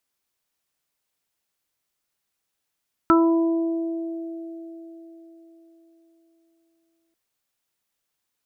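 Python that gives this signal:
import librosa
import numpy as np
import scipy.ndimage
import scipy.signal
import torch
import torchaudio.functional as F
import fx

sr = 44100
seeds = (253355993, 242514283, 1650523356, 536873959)

y = fx.additive(sr, length_s=4.04, hz=331.0, level_db=-13.5, upper_db=(-13, -7, 1.0), decay_s=4.19, upper_decays_s=(4.34, 1.15, 0.27))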